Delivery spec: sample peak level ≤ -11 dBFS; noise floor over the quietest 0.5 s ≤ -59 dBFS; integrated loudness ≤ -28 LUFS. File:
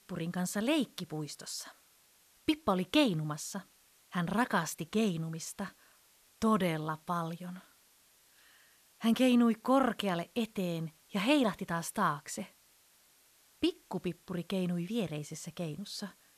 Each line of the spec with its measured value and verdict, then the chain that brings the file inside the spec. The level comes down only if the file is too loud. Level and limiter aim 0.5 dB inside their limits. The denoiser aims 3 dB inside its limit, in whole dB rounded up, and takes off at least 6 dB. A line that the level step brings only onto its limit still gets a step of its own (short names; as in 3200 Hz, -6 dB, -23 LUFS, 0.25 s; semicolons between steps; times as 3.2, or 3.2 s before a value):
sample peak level -13.0 dBFS: OK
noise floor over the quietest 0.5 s -66 dBFS: OK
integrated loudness -33.5 LUFS: OK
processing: none